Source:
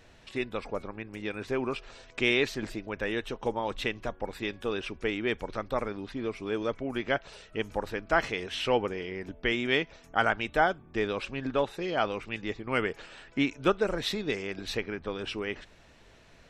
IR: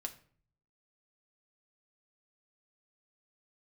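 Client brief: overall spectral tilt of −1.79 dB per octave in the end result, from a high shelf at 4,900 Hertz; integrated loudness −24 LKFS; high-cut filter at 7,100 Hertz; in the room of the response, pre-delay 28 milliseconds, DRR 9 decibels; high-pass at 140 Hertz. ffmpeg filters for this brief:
-filter_complex "[0:a]highpass=140,lowpass=7100,highshelf=frequency=4900:gain=8.5,asplit=2[link_01][link_02];[1:a]atrim=start_sample=2205,adelay=28[link_03];[link_02][link_03]afir=irnorm=-1:irlink=0,volume=-7dB[link_04];[link_01][link_04]amix=inputs=2:normalize=0,volume=6dB"

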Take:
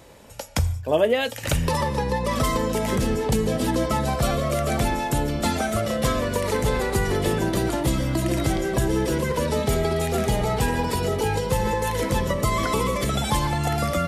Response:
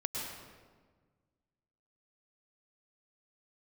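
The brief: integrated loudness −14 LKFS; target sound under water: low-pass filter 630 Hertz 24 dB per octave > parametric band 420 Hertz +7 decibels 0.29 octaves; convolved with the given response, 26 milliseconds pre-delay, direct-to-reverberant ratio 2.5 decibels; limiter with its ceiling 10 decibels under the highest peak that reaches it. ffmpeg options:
-filter_complex "[0:a]alimiter=limit=-18dB:level=0:latency=1,asplit=2[link_01][link_02];[1:a]atrim=start_sample=2205,adelay=26[link_03];[link_02][link_03]afir=irnorm=-1:irlink=0,volume=-5.5dB[link_04];[link_01][link_04]amix=inputs=2:normalize=0,lowpass=frequency=630:width=0.5412,lowpass=frequency=630:width=1.3066,equalizer=frequency=420:width_type=o:width=0.29:gain=7,volume=11dB"

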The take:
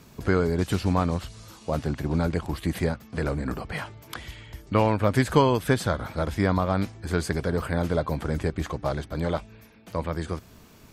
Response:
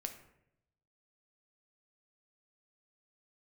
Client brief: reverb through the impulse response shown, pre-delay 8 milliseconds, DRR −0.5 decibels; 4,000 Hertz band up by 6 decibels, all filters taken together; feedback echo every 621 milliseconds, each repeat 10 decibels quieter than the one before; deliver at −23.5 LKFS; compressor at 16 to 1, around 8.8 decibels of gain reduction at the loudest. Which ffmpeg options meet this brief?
-filter_complex "[0:a]equalizer=frequency=4000:width_type=o:gain=7.5,acompressor=threshold=-23dB:ratio=16,aecho=1:1:621|1242|1863|2484:0.316|0.101|0.0324|0.0104,asplit=2[link_01][link_02];[1:a]atrim=start_sample=2205,adelay=8[link_03];[link_02][link_03]afir=irnorm=-1:irlink=0,volume=2.5dB[link_04];[link_01][link_04]amix=inputs=2:normalize=0,volume=4dB"

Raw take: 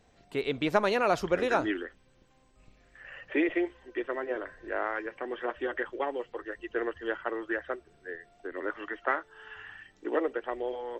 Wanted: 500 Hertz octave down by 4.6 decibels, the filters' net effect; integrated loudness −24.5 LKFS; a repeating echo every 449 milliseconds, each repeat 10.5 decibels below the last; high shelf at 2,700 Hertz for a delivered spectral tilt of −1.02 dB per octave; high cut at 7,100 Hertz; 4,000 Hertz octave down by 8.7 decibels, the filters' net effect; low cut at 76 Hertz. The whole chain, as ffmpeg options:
ffmpeg -i in.wav -af "highpass=76,lowpass=7100,equalizer=frequency=500:width_type=o:gain=-5.5,highshelf=frequency=2700:gain=-8.5,equalizer=frequency=4000:width_type=o:gain=-4.5,aecho=1:1:449|898|1347:0.299|0.0896|0.0269,volume=11dB" out.wav

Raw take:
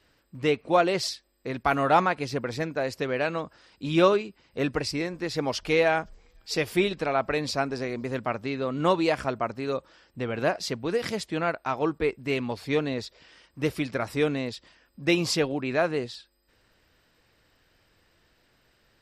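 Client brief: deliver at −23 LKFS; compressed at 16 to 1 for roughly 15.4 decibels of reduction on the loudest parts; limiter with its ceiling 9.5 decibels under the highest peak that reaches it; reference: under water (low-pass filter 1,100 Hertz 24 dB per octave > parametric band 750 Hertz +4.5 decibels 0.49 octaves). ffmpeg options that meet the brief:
ffmpeg -i in.wav -af "acompressor=threshold=-31dB:ratio=16,alimiter=level_in=2.5dB:limit=-24dB:level=0:latency=1,volume=-2.5dB,lowpass=frequency=1100:width=0.5412,lowpass=frequency=1100:width=1.3066,equalizer=frequency=750:width_type=o:width=0.49:gain=4.5,volume=15.5dB" out.wav

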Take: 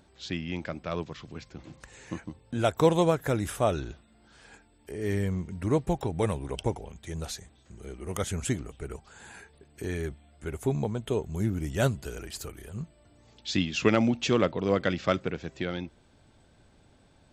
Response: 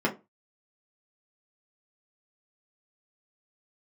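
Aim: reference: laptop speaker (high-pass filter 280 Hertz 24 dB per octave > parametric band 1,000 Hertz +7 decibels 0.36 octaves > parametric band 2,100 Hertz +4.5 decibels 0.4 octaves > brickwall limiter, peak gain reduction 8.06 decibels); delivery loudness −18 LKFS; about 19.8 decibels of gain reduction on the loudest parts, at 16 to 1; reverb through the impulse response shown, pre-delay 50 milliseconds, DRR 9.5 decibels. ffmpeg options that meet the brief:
-filter_complex "[0:a]acompressor=threshold=-36dB:ratio=16,asplit=2[link_01][link_02];[1:a]atrim=start_sample=2205,adelay=50[link_03];[link_02][link_03]afir=irnorm=-1:irlink=0,volume=-21dB[link_04];[link_01][link_04]amix=inputs=2:normalize=0,highpass=frequency=280:width=0.5412,highpass=frequency=280:width=1.3066,equalizer=frequency=1000:width_type=o:width=0.36:gain=7,equalizer=frequency=2100:width_type=o:width=0.4:gain=4.5,volume=26.5dB,alimiter=limit=-5dB:level=0:latency=1"

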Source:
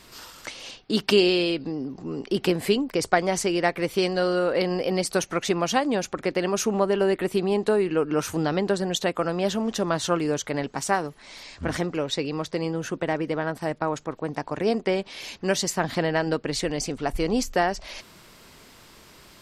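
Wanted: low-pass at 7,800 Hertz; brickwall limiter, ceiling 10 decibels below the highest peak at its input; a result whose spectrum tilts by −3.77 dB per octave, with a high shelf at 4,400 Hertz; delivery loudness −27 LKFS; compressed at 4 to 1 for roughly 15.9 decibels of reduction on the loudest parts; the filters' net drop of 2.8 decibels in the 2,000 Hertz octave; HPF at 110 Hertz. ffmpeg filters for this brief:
ffmpeg -i in.wav -af "highpass=110,lowpass=7800,equalizer=frequency=2000:width_type=o:gain=-5.5,highshelf=frequency=4400:gain=8.5,acompressor=threshold=-35dB:ratio=4,volume=12.5dB,alimiter=limit=-15.5dB:level=0:latency=1" out.wav

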